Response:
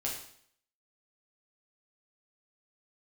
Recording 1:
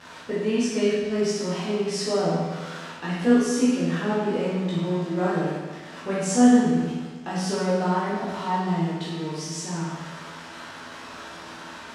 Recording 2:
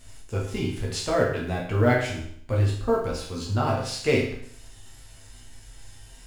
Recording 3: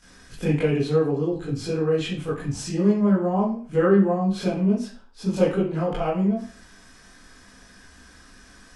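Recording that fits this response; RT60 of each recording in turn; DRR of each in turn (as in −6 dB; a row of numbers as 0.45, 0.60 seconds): 2; 1.3, 0.60, 0.45 seconds; −10.0, −4.0, −10.5 decibels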